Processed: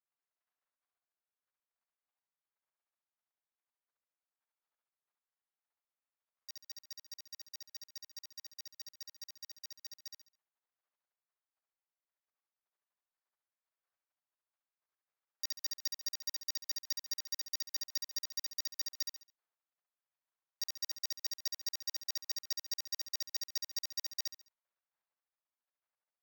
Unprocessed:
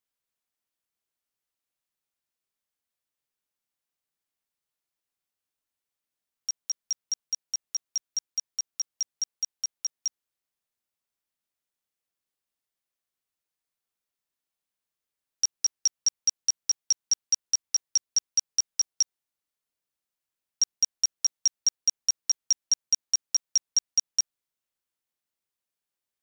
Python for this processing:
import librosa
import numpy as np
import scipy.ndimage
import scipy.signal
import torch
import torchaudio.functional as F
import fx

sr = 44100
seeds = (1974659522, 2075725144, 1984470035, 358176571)

y = scipy.signal.medfilt(x, 15)
y = scipy.signal.sosfilt(scipy.signal.butter(2, 710.0, 'highpass', fs=sr, output='sos'), y)
y = fx.peak_eq(y, sr, hz=7800.0, db=-8.5, octaves=1.4)
y = fx.level_steps(y, sr, step_db=10)
y = fx.echo_feedback(y, sr, ms=69, feedback_pct=32, wet_db=-3.0)
y = y * librosa.db_to_amplitude(4.5)